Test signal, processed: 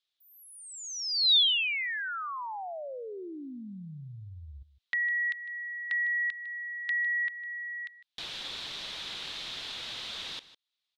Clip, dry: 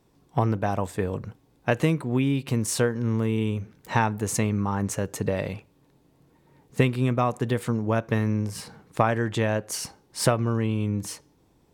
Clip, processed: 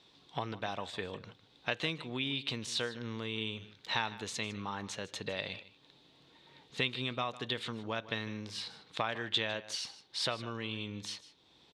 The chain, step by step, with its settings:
spectral tilt +3 dB per octave
downward compressor 1.5 to 1, threshold −53 dBFS
low-pass with resonance 3,700 Hz, resonance Q 4.5
on a send: single-tap delay 154 ms −16.5 dB

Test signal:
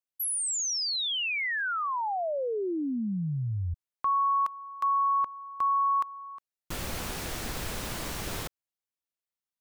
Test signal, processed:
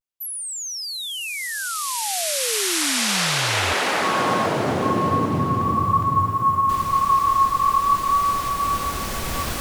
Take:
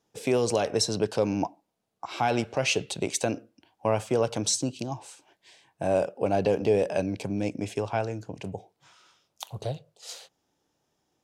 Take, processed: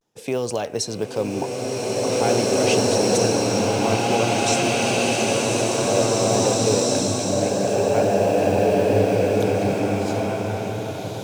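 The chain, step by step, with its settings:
floating-point word with a short mantissa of 4 bits
tape wow and flutter 0.33 Hz 45 cents
slow-attack reverb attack 2,420 ms, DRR −8.5 dB

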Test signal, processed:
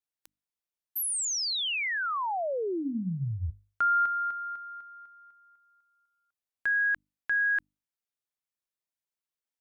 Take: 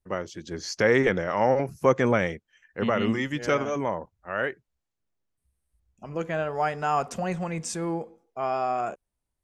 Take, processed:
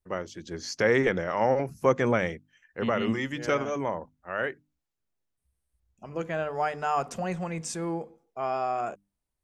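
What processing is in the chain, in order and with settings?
mains-hum notches 50/100/150/200/250/300 Hz
level −2 dB

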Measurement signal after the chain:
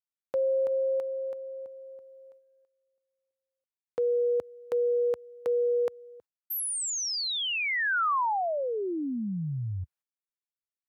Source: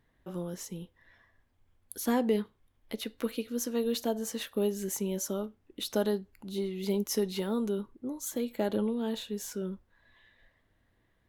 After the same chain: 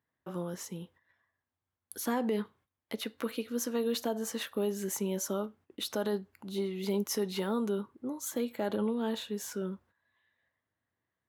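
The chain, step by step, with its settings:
noise gate −57 dBFS, range −15 dB
high-pass filter 78 Hz 24 dB per octave
parametric band 1,200 Hz +6 dB 1.6 octaves
brickwall limiter −21.5 dBFS
level −1 dB

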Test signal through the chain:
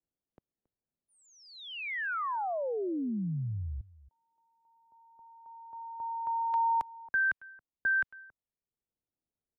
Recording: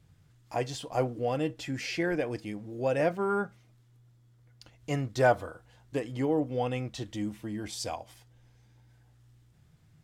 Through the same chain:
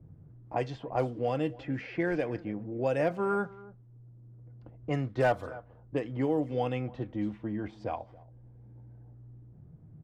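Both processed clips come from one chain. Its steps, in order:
high-shelf EQ 4,800 Hz −6.5 dB
single-tap delay 275 ms −22.5 dB
low-pass that shuts in the quiet parts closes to 450 Hz, open at −24 dBFS
hard clipping −17 dBFS
multiband upward and downward compressor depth 40%

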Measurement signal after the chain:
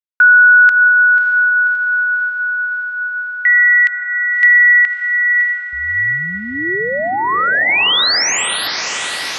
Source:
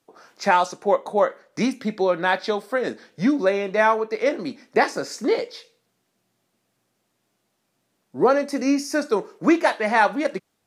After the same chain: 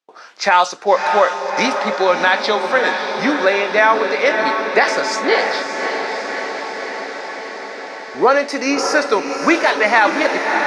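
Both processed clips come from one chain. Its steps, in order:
high-pass filter 1,300 Hz 6 dB per octave
noise gate with hold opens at −54 dBFS
low-pass filter 5,100 Hz 12 dB per octave
on a send: feedback delay with all-pass diffusion 611 ms, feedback 73%, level −8 dB
on the sum: boost into a limiter +14.5 dB
level −1 dB

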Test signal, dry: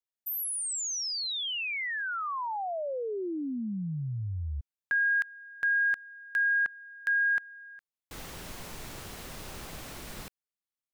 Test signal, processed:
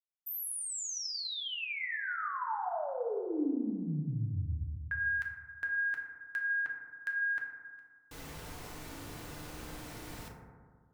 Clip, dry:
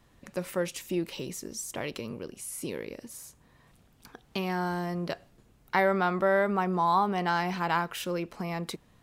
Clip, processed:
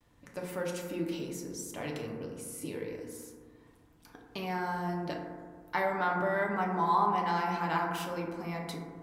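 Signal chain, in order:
noise gate with hold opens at −56 dBFS, range −34 dB
feedback delay network reverb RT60 1.7 s, low-frequency decay 1.2×, high-frequency decay 0.25×, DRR −1 dB
level −6.5 dB

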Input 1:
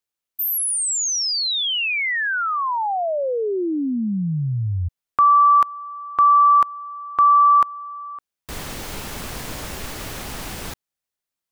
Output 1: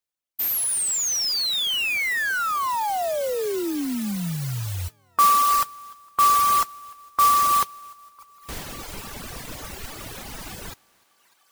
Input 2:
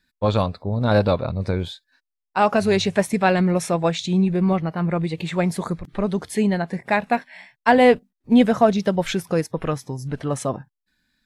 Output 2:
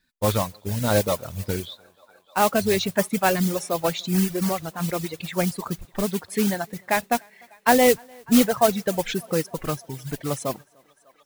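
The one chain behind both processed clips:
feedback echo with a high-pass in the loop 299 ms, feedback 75%, high-pass 310 Hz, level −17.5 dB
noise that follows the level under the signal 10 dB
reverb reduction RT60 1.8 s
level −2 dB

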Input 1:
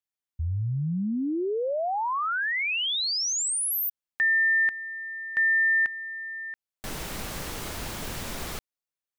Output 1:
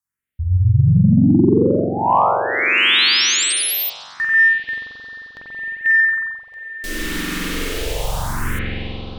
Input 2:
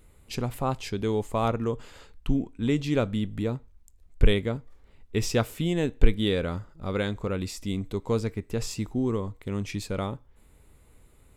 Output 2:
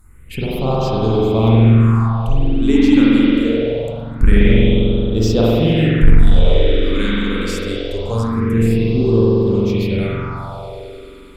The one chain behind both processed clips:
spring reverb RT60 3.6 s, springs 44 ms, chirp 60 ms, DRR −8 dB
all-pass phaser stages 4, 0.24 Hz, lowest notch 110–2,000 Hz
sine wavefolder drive 4 dB, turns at 0 dBFS
level −1.5 dB

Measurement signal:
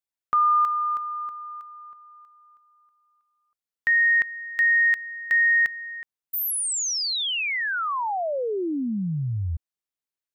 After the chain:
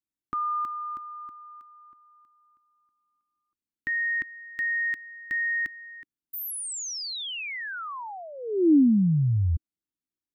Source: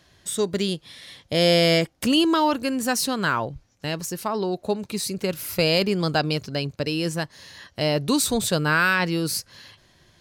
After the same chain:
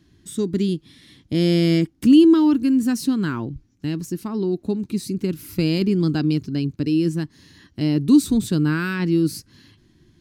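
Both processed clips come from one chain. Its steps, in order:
low shelf with overshoot 420 Hz +10.5 dB, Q 3
level −7.5 dB

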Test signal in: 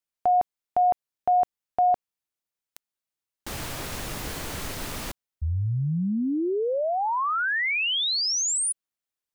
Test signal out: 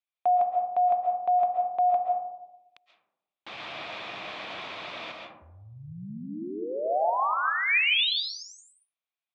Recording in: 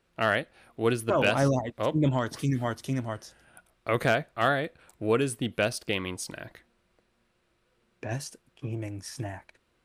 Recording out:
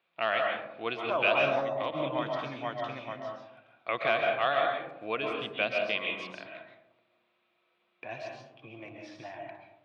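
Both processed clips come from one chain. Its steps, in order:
loudspeaker in its box 250–4,200 Hz, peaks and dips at 260 Hz −6 dB, 410 Hz −5 dB, 710 Hz +6 dB, 1,100 Hz +6 dB, 2,400 Hz +10 dB, 3,500 Hz +8 dB
comb and all-pass reverb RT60 0.93 s, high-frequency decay 0.3×, pre-delay 95 ms, DRR 1 dB
level −7.5 dB

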